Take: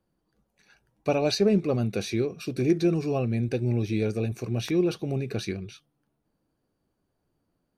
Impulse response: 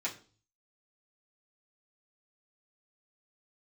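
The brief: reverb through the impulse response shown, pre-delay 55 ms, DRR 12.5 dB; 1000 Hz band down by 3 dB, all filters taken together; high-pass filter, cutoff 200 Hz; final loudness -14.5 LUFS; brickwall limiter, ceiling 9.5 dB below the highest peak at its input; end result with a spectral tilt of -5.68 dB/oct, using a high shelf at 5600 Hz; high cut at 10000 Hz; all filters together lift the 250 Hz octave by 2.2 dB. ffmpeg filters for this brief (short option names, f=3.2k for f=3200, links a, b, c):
-filter_complex "[0:a]highpass=200,lowpass=10k,equalizer=f=250:t=o:g=5.5,equalizer=f=1k:t=o:g=-5.5,highshelf=f=5.6k:g=3.5,alimiter=limit=-19.5dB:level=0:latency=1,asplit=2[a][b];[1:a]atrim=start_sample=2205,adelay=55[c];[b][c]afir=irnorm=-1:irlink=0,volume=-16dB[d];[a][d]amix=inputs=2:normalize=0,volume=15dB"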